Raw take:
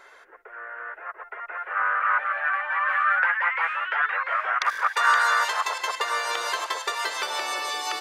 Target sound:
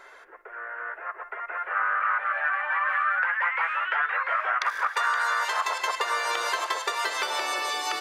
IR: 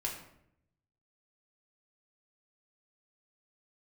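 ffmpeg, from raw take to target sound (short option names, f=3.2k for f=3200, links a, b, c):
-filter_complex "[0:a]acompressor=threshold=-23dB:ratio=6,asplit=2[a][b];[1:a]atrim=start_sample=2205,lowpass=3.1k[c];[b][c]afir=irnorm=-1:irlink=0,volume=-12dB[d];[a][d]amix=inputs=2:normalize=0"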